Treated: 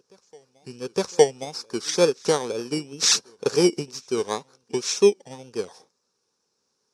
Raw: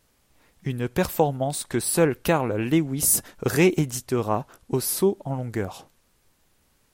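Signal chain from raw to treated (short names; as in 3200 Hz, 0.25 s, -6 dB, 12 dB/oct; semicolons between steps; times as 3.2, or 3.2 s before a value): FFT order left unsorted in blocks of 16 samples; wow and flutter 110 cents; speaker cabinet 280–7800 Hz, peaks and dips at 300 Hz -7 dB, 440 Hz +6 dB, 660 Hz -10 dB, 2000 Hz -9 dB, 3200 Hz -8 dB, 5500 Hz +9 dB; reverse echo 0.862 s -23 dB; upward expander 1.5:1, over -36 dBFS; gain +5.5 dB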